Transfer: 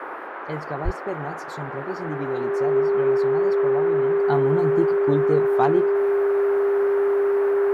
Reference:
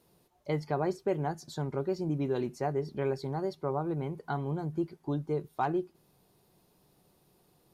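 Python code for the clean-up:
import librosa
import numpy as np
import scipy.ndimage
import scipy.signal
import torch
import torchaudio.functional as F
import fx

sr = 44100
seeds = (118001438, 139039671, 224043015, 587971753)

y = fx.notch(x, sr, hz=400.0, q=30.0)
y = fx.highpass(y, sr, hz=140.0, slope=24, at=(0.84, 0.96), fade=0.02)
y = fx.noise_reduce(y, sr, print_start_s=0.0, print_end_s=0.5, reduce_db=30.0)
y = fx.gain(y, sr, db=fx.steps((0.0, 0.0), (4.2, -8.5)))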